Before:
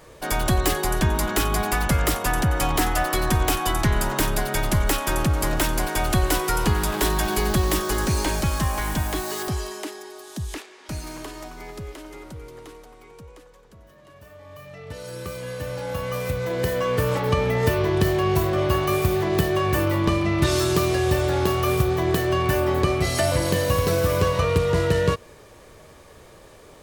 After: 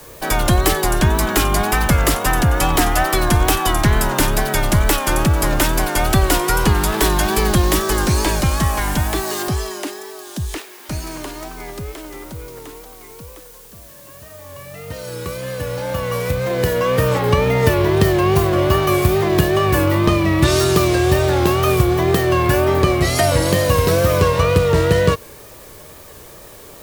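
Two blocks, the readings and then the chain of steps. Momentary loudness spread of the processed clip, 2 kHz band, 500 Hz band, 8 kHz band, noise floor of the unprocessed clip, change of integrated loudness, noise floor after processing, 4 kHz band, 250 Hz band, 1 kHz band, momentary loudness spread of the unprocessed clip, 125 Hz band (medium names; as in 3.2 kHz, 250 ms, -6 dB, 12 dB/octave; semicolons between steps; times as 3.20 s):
15 LU, +6.0 dB, +6.0 dB, +6.0 dB, -48 dBFS, +6.0 dB, -40 dBFS, +6.0 dB, +6.0 dB, +6.0 dB, 15 LU, +6.0 dB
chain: added noise blue -49 dBFS; wow and flutter 71 cents; trim +6 dB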